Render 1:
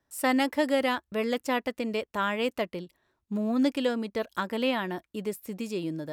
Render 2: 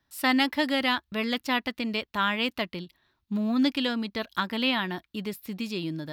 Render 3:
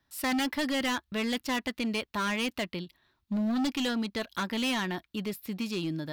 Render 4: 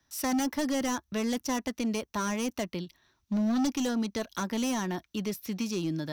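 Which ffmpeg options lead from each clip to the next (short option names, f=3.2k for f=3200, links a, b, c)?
-af "equalizer=f=500:t=o:w=1:g=-10,equalizer=f=4k:t=o:w=1:g=8,equalizer=f=8k:t=o:w=1:g=-10,volume=3.5dB"
-af "volume=26dB,asoftclip=hard,volume=-26dB"
-filter_complex "[0:a]equalizer=f=5.9k:w=5.3:g=14.5,acrossover=split=130|1200|7000[a][b][c][d];[c]acompressor=threshold=-42dB:ratio=6[e];[a][b][e][d]amix=inputs=4:normalize=0,volume=1.5dB"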